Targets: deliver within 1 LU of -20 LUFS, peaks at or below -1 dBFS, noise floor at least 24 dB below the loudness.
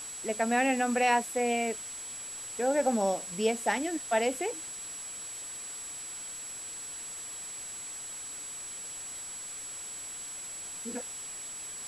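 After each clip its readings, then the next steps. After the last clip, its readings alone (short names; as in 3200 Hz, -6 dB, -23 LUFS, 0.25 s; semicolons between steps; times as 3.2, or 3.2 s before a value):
steady tone 7800 Hz; tone level -39 dBFS; noise floor -41 dBFS; noise floor target -57 dBFS; loudness -32.5 LUFS; peak -13.5 dBFS; loudness target -20.0 LUFS
-> notch 7800 Hz, Q 30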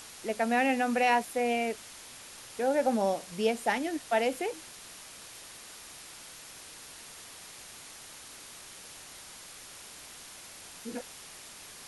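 steady tone none; noise floor -48 dBFS; noise floor target -54 dBFS
-> denoiser 6 dB, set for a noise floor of -48 dBFS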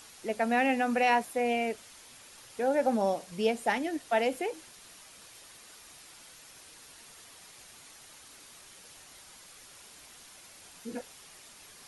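noise floor -53 dBFS; noise floor target -54 dBFS
-> denoiser 6 dB, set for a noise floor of -53 dBFS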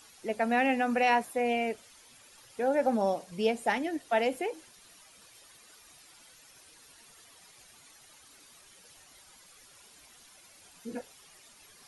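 noise floor -57 dBFS; loudness -29.5 LUFS; peak -13.5 dBFS; loudness target -20.0 LUFS
-> gain +9.5 dB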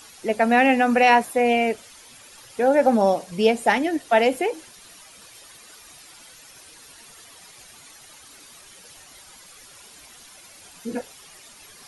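loudness -20.0 LUFS; peak -4.0 dBFS; noise floor -48 dBFS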